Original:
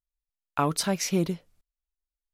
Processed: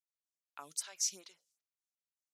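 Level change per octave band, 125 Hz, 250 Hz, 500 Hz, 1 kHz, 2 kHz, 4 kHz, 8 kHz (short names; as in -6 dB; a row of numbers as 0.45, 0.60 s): under -40 dB, -36.5 dB, -29.5 dB, -23.5 dB, -18.5 dB, -9.0 dB, -3.0 dB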